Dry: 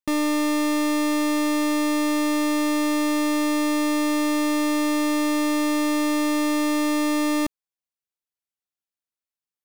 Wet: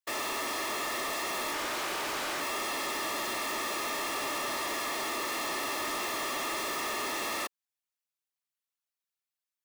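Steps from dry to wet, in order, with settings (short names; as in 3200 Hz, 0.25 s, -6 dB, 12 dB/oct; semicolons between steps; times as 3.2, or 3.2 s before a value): whisperiser; HPF 820 Hz 12 dB/oct; soft clip -29.5 dBFS, distortion -11 dB; 1.53–2.41 Doppler distortion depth 0.34 ms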